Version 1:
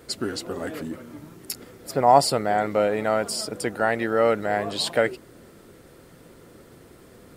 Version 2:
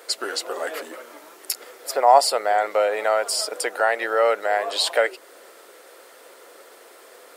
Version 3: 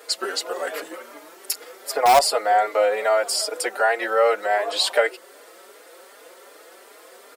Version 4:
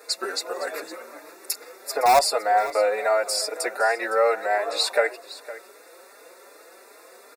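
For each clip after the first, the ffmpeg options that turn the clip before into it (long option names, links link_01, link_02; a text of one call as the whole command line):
ffmpeg -i in.wav -filter_complex "[0:a]highpass=frequency=490:width=0.5412,highpass=frequency=490:width=1.3066,asplit=2[link_01][link_02];[link_02]acompressor=threshold=-31dB:ratio=6,volume=0.5dB[link_03];[link_01][link_03]amix=inputs=2:normalize=0,volume=1dB" out.wav
ffmpeg -i in.wav -filter_complex "[0:a]asplit=2[link_01][link_02];[link_02]aeval=exprs='(mod(2*val(0)+1,2)-1)/2':channel_layout=same,volume=-6dB[link_03];[link_01][link_03]amix=inputs=2:normalize=0,asplit=2[link_04][link_05];[link_05]adelay=4.5,afreqshift=2.6[link_06];[link_04][link_06]amix=inputs=2:normalize=1" out.wav
ffmpeg -i in.wav -af "asuperstop=centerf=3100:order=20:qfactor=4.8,aecho=1:1:511:0.15,volume=-2dB" out.wav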